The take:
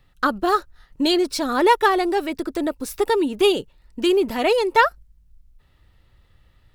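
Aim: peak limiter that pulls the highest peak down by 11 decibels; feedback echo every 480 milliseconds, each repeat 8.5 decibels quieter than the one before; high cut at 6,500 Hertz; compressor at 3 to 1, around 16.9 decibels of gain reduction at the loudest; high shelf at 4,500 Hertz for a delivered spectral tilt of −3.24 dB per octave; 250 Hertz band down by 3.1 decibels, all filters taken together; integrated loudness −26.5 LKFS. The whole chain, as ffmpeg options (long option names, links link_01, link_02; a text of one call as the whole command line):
ffmpeg -i in.wav -af "lowpass=6500,equalizer=frequency=250:width_type=o:gain=-5,highshelf=frequency=4500:gain=7.5,acompressor=threshold=-35dB:ratio=3,alimiter=level_in=5.5dB:limit=-24dB:level=0:latency=1,volume=-5.5dB,aecho=1:1:480|960|1440|1920:0.376|0.143|0.0543|0.0206,volume=12dB" out.wav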